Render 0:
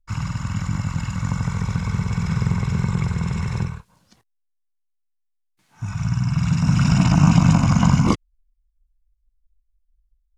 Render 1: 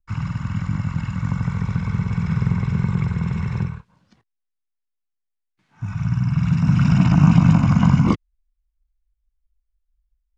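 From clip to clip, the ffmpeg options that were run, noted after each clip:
ffmpeg -i in.wav -filter_complex "[0:a]lowpass=1900,equalizer=frequency=170:width=0.38:gain=8,acrossover=split=650[link_01][link_02];[link_02]crystalizer=i=8:c=0[link_03];[link_01][link_03]amix=inputs=2:normalize=0,volume=-6.5dB" out.wav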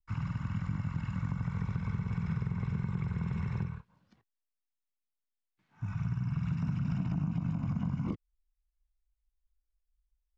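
ffmpeg -i in.wav -filter_complex "[0:a]highshelf=frequency=5400:gain=-7.5,acrossover=split=650[link_01][link_02];[link_02]alimiter=level_in=1dB:limit=-24dB:level=0:latency=1:release=187,volume=-1dB[link_03];[link_01][link_03]amix=inputs=2:normalize=0,acompressor=threshold=-20dB:ratio=12,volume=-8.5dB" out.wav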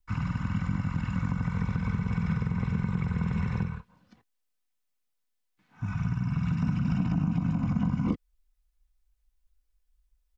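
ffmpeg -i in.wav -af "aecho=1:1:4:0.36,volume=6.5dB" out.wav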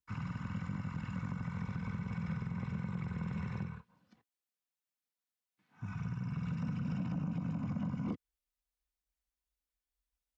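ffmpeg -i in.wav -af "highpass=93,asoftclip=type=tanh:threshold=-20.5dB,volume=-7.5dB" out.wav

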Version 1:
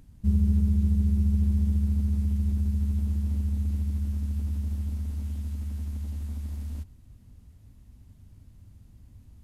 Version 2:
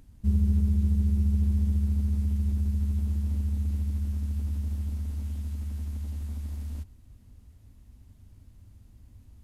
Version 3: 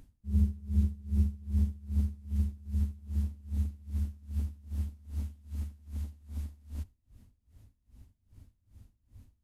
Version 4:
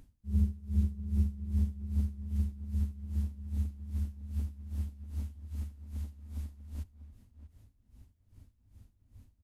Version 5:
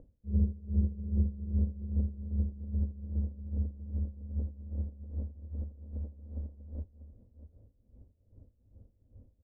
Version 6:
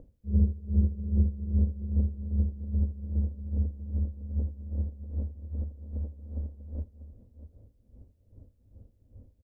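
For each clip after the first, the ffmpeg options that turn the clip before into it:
ffmpeg -i in.wav -af "equalizer=frequency=150:width_type=o:width=0.71:gain=-6" out.wav
ffmpeg -i in.wav -af "aeval=exprs='val(0)*pow(10,-25*(0.5-0.5*cos(2*PI*2.5*n/s))/20)':channel_layout=same" out.wav
ffmpeg -i in.wav -filter_complex "[0:a]asplit=2[link_01][link_02];[link_02]adelay=641.4,volume=-13dB,highshelf=frequency=4000:gain=-14.4[link_03];[link_01][link_03]amix=inputs=2:normalize=0,volume=-1.5dB" out.wav
ffmpeg -i in.wav -af "lowpass=frequency=520:width_type=q:width=4.9" out.wav
ffmpeg -i in.wav -af "aecho=1:1:80:0.075,volume=4dB" out.wav

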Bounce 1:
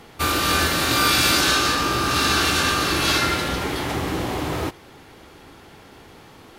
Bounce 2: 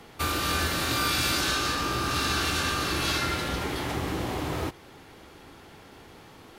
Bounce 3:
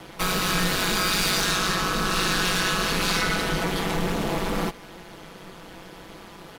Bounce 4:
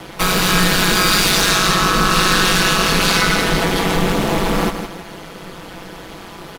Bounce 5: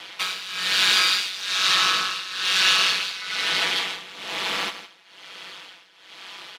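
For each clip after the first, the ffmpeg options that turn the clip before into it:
ffmpeg -i in.wav -filter_complex "[0:a]acrossover=split=140[link_01][link_02];[link_02]acompressor=threshold=-28dB:ratio=1.5[link_03];[link_01][link_03]amix=inputs=2:normalize=0,volume=-3.5dB" out.wav
ffmpeg -i in.wav -af "asoftclip=type=tanh:threshold=-24.5dB,aeval=exprs='val(0)*sin(2*PI*95*n/s)':channel_layout=same,aecho=1:1:6:0.42,volume=8.5dB" out.wav
ffmpeg -i in.wav -filter_complex "[0:a]asplit=2[link_01][link_02];[link_02]acrusher=bits=5:mode=log:mix=0:aa=0.000001,volume=-8.5dB[link_03];[link_01][link_03]amix=inputs=2:normalize=0,aecho=1:1:163|326|489|652:0.376|0.124|0.0409|0.0135,volume=5.5dB" out.wav
ffmpeg -i in.wav -filter_complex "[0:a]bandpass=frequency=3300:width_type=q:width=1.3:csg=0,asplit=2[link_01][link_02];[link_02]asoftclip=type=tanh:threshold=-21dB,volume=-8dB[link_03];[link_01][link_03]amix=inputs=2:normalize=0,tremolo=f=1.1:d=0.85,volume=1dB" out.wav

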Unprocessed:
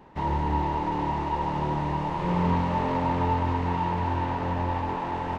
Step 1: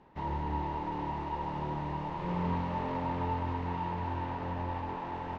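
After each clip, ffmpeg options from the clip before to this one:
ffmpeg -i in.wav -af "lowpass=5700,volume=-8dB" out.wav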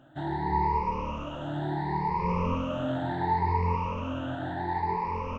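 ffmpeg -i in.wav -af "afftfilt=real='re*pow(10,23/40*sin(2*PI*(0.85*log(max(b,1)*sr/1024/100)/log(2)-(0.7)*(pts-256)/sr)))':imag='im*pow(10,23/40*sin(2*PI*(0.85*log(max(b,1)*sr/1024/100)/log(2)-(0.7)*(pts-256)/sr)))':win_size=1024:overlap=0.75" out.wav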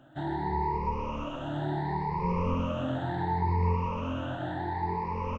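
ffmpeg -i in.wav -filter_complex "[0:a]acrossover=split=490[link_01][link_02];[link_02]acompressor=threshold=-36dB:ratio=2[link_03];[link_01][link_03]amix=inputs=2:normalize=0,asplit=2[link_04][link_05];[link_05]aecho=0:1:127:0.447[link_06];[link_04][link_06]amix=inputs=2:normalize=0" out.wav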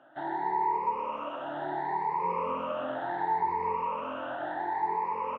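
ffmpeg -i in.wav -af "highpass=540,lowpass=2000,volume=4dB" out.wav

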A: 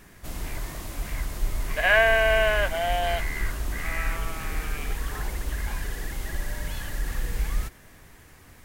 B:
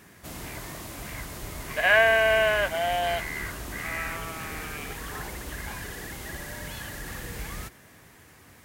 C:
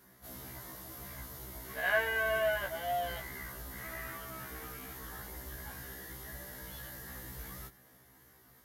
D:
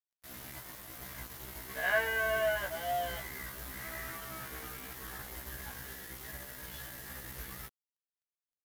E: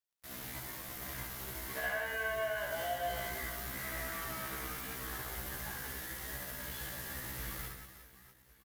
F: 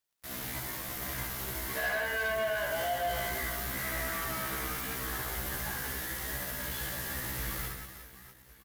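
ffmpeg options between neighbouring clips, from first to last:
ffmpeg -i in.wav -af "highpass=93" out.wav
ffmpeg -i in.wav -af "equalizer=frequency=2500:width_type=o:width=0.33:gain=-11,equalizer=frequency=8000:width_type=o:width=0.33:gain=-5,equalizer=frequency=12500:width_type=o:width=0.33:gain=12,afftfilt=real='re*1.73*eq(mod(b,3),0)':imag='im*1.73*eq(mod(b,3),0)':win_size=2048:overlap=0.75,volume=-7dB" out.wav
ffmpeg -i in.wav -filter_complex "[0:a]acrossover=split=180|1800|2600[link_01][link_02][link_03][link_04];[link_03]acompressor=mode=upward:threshold=-48dB:ratio=2.5[link_05];[link_01][link_02][link_05][link_04]amix=inputs=4:normalize=0,acrusher=bits=6:mix=0:aa=0.5" out.wav
ffmpeg -i in.wav -af "acompressor=threshold=-37dB:ratio=6,aecho=1:1:70|182|361.2|647.9|1107:0.631|0.398|0.251|0.158|0.1,volume=1dB" out.wav
ffmpeg -i in.wav -af "asoftclip=type=tanh:threshold=-33dB,volume=7dB" out.wav

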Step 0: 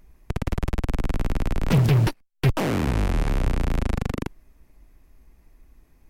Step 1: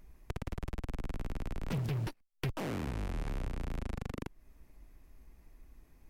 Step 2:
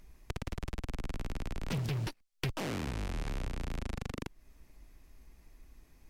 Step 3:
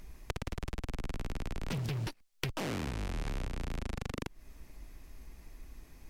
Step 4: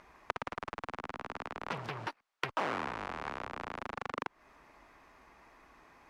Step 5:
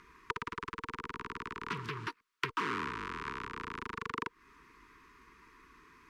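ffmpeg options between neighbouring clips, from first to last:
ffmpeg -i in.wav -af "acompressor=threshold=-35dB:ratio=2.5,volume=-3.5dB" out.wav
ffmpeg -i in.wav -af "equalizer=frequency=5100:width_type=o:width=2.4:gain=6.5" out.wav
ffmpeg -i in.wav -af "acompressor=threshold=-39dB:ratio=6,volume=6.5dB" out.wav
ffmpeg -i in.wav -af "bandpass=frequency=1100:width_type=q:width=1.5:csg=0,volume=10.5dB" out.wav
ffmpeg -i in.wav -af "asuperstop=centerf=660:order=20:qfactor=1.4,volume=1.5dB" out.wav

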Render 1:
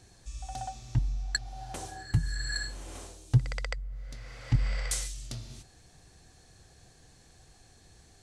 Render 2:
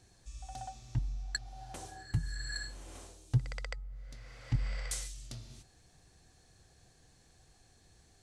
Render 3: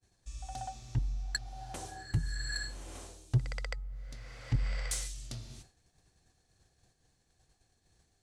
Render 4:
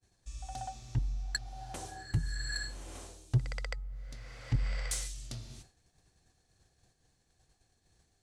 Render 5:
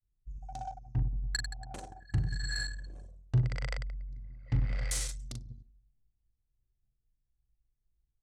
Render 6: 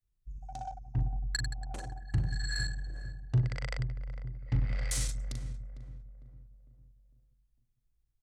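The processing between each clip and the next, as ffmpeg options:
ffmpeg -i in.wav -af "bandreject=frequency=423.3:width_type=h:width=4,bandreject=frequency=846.6:width_type=h:width=4,bandreject=frequency=1269.9:width_type=h:width=4,volume=-6dB" out.wav
ffmpeg -i in.wav -filter_complex "[0:a]agate=range=-33dB:threshold=-54dB:ratio=3:detection=peak,asplit=2[link_01][link_02];[link_02]asoftclip=type=tanh:threshold=-30.5dB,volume=-3dB[link_03];[link_01][link_03]amix=inputs=2:normalize=0,volume=-1.5dB" out.wav
ffmpeg -i in.wav -af anull out.wav
ffmpeg -i in.wav -af "aecho=1:1:40|96|174.4|284.2|437.8:0.631|0.398|0.251|0.158|0.1,anlmdn=0.631" out.wav
ffmpeg -i in.wav -filter_complex "[0:a]asplit=2[link_01][link_02];[link_02]adelay=453,lowpass=frequency=1000:poles=1,volume=-10dB,asplit=2[link_03][link_04];[link_04]adelay=453,lowpass=frequency=1000:poles=1,volume=0.48,asplit=2[link_05][link_06];[link_06]adelay=453,lowpass=frequency=1000:poles=1,volume=0.48,asplit=2[link_07][link_08];[link_08]adelay=453,lowpass=frequency=1000:poles=1,volume=0.48,asplit=2[link_09][link_10];[link_10]adelay=453,lowpass=frequency=1000:poles=1,volume=0.48[link_11];[link_01][link_03][link_05][link_07][link_09][link_11]amix=inputs=6:normalize=0" out.wav

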